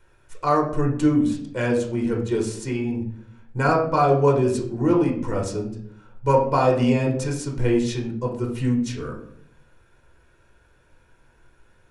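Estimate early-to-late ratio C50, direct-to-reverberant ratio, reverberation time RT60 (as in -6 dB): 7.0 dB, -0.5 dB, 0.60 s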